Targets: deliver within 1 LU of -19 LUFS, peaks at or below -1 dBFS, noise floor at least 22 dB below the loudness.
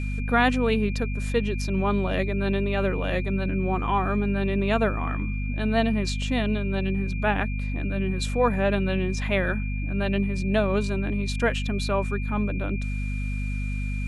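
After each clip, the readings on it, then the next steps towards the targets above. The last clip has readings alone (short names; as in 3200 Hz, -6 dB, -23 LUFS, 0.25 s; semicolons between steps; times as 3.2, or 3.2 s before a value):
hum 50 Hz; harmonics up to 250 Hz; hum level -26 dBFS; steady tone 2400 Hz; tone level -38 dBFS; loudness -26.0 LUFS; peak -8.0 dBFS; loudness target -19.0 LUFS
-> de-hum 50 Hz, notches 5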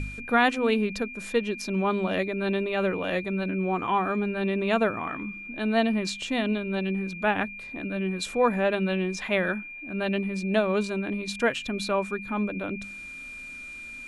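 hum none; steady tone 2400 Hz; tone level -38 dBFS
-> notch 2400 Hz, Q 30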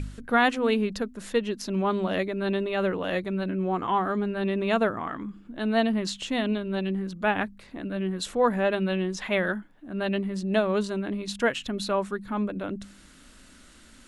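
steady tone none; loudness -27.5 LUFS; peak -8.5 dBFS; loudness target -19.0 LUFS
-> gain +8.5 dB; limiter -1 dBFS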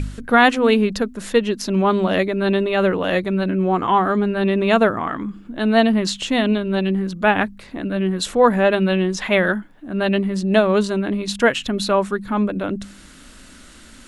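loudness -19.0 LUFS; peak -1.0 dBFS; noise floor -44 dBFS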